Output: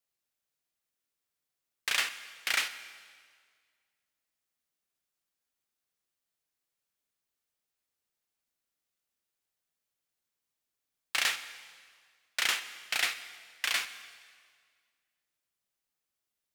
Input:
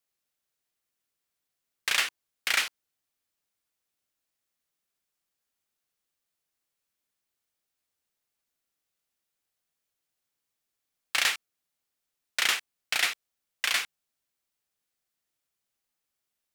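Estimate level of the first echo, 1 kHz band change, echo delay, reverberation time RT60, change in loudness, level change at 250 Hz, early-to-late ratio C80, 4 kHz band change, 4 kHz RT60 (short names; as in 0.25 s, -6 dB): none, -3.0 dB, none, 1.8 s, -3.5 dB, -3.0 dB, 13.5 dB, -3.0 dB, 1.7 s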